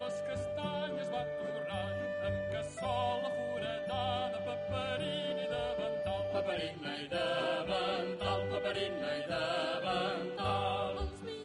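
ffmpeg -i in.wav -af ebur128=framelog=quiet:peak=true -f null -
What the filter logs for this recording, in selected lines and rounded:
Integrated loudness:
  I:         -36.0 LUFS
  Threshold: -46.0 LUFS
Loudness range:
  LRA:         2.0 LU
  Threshold: -55.9 LUFS
  LRA low:   -36.9 LUFS
  LRA high:  -34.9 LUFS
True peak:
  Peak:      -20.7 dBFS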